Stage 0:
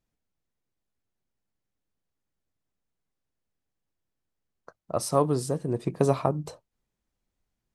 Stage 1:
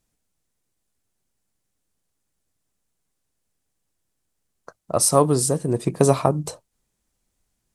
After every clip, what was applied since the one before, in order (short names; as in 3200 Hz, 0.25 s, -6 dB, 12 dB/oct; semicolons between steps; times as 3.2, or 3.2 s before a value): bell 9100 Hz +10.5 dB 1.3 oct; gain +6 dB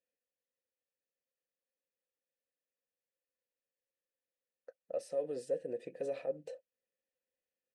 comb 4 ms, depth 31%; limiter -13 dBFS, peak gain reduction 11.5 dB; vowel filter e; gain -3.5 dB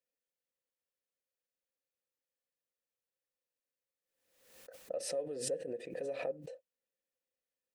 backwards sustainer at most 67 dB/s; gain -2.5 dB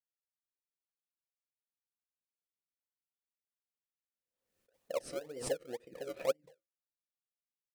flange 0.37 Hz, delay 7.8 ms, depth 2.6 ms, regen -70%; in parallel at -4.5 dB: decimation with a swept rate 34×, swing 100% 2 Hz; on the sum: upward expander 2.5:1, over -53 dBFS; gain +9 dB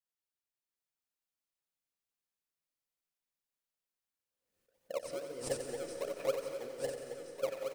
regenerating reverse delay 0.687 s, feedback 59%, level -2 dB; feedback echo 89 ms, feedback 56%, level -8.5 dB; reverb RT60 2.8 s, pre-delay 0.11 s, DRR 8.5 dB; gain -2 dB